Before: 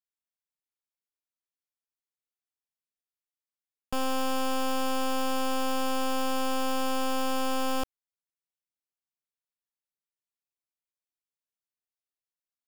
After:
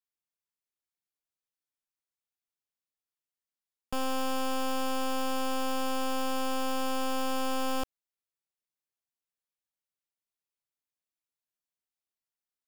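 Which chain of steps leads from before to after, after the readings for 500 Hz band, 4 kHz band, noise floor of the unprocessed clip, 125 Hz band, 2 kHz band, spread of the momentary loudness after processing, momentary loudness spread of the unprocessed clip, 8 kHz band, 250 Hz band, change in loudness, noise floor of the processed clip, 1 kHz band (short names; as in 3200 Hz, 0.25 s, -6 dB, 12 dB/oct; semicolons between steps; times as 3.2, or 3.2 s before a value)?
-2.0 dB, -2.0 dB, under -85 dBFS, n/a, -2.0 dB, 2 LU, 2 LU, -2.0 dB, -2.0 dB, -2.5 dB, under -85 dBFS, -2.0 dB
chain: vocal rider within 4 dB 2 s; gain -2 dB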